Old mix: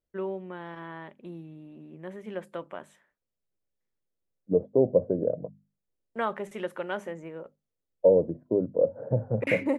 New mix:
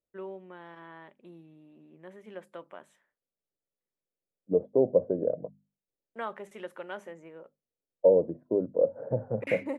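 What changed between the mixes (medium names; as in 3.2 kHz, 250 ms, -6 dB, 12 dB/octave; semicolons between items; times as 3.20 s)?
first voice -6.0 dB; master: add bass shelf 150 Hz -11.5 dB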